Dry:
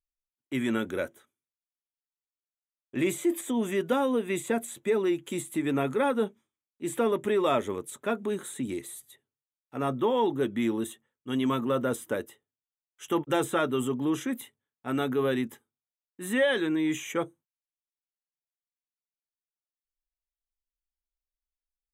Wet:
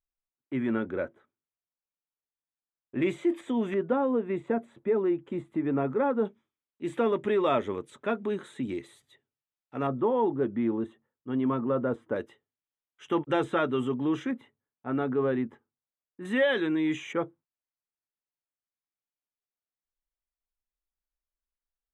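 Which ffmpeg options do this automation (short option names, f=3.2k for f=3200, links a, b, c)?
-af "asetnsamples=n=441:p=0,asendcmd='3.02 lowpass f 2900;3.74 lowpass f 1300;6.25 lowpass f 3500;9.87 lowpass f 1300;12.16 lowpass f 3200;14.31 lowpass f 1500;16.25 lowpass f 3800;17.13 lowpass f 1900',lowpass=1.6k"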